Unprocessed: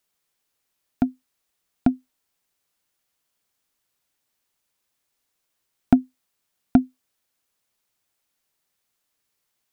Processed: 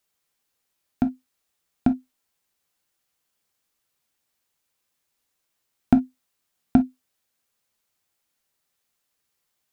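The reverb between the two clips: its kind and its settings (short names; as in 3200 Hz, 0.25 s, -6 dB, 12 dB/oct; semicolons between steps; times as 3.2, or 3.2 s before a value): non-linear reverb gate 80 ms falling, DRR 7.5 dB; gain -1 dB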